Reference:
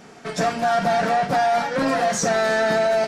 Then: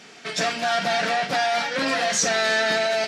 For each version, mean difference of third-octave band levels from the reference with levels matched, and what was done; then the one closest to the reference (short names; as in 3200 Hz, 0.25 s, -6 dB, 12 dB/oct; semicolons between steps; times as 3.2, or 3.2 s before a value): 4.0 dB: weighting filter D; gain -4 dB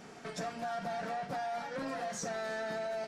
1.5 dB: compressor 2:1, threshold -39 dBFS, peak gain reduction 12 dB; gain -6 dB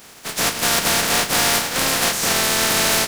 10.5 dB: spectral contrast lowered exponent 0.25; gain +1.5 dB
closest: second